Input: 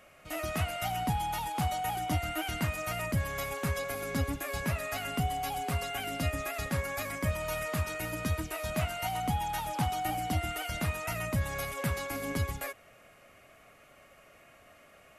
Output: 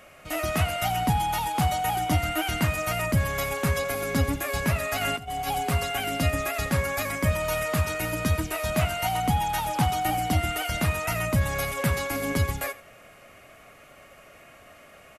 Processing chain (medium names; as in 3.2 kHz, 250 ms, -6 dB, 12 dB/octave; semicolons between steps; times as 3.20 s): 5.01–5.57 s: compressor with a negative ratio -36 dBFS, ratio -0.5; delay 87 ms -18.5 dB; trim +7 dB